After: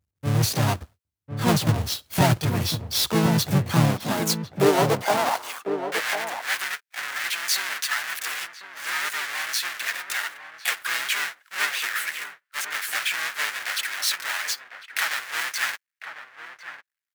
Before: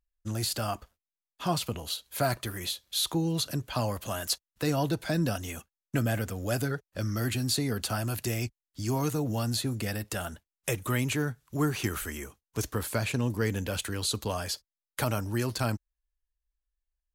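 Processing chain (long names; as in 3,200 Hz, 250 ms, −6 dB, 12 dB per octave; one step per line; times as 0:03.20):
each half-wave held at its own peak
pitch-shifted copies added +5 semitones −1 dB
high-pass filter sweep 87 Hz → 1,700 Hz, 0:03.38–0:05.91
slap from a distant wall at 180 metres, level −8 dB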